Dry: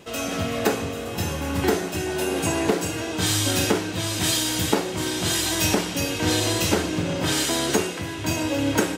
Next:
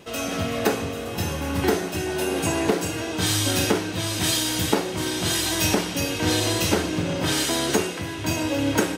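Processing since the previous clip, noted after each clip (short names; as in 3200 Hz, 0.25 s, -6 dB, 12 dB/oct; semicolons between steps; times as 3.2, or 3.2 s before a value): notch 7300 Hz, Q 13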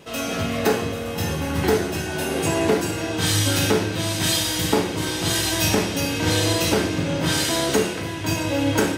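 reverb RT60 0.60 s, pre-delay 6 ms, DRR 3 dB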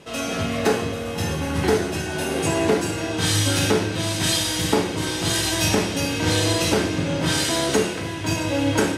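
LPF 12000 Hz 24 dB/oct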